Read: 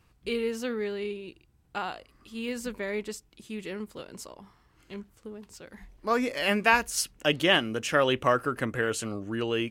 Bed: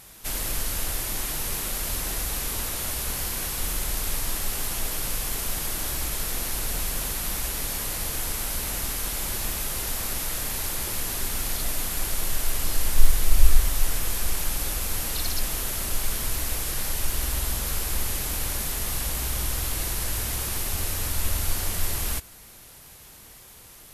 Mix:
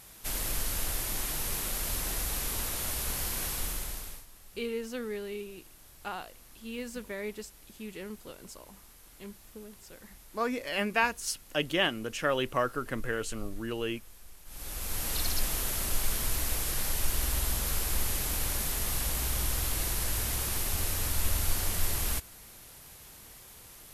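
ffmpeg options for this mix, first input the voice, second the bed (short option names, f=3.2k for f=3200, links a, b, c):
-filter_complex "[0:a]adelay=4300,volume=-5dB[a];[1:a]volume=19dB,afade=t=out:st=3.51:d=0.75:silence=0.0794328,afade=t=in:st=14.45:d=0.71:silence=0.0707946[b];[a][b]amix=inputs=2:normalize=0"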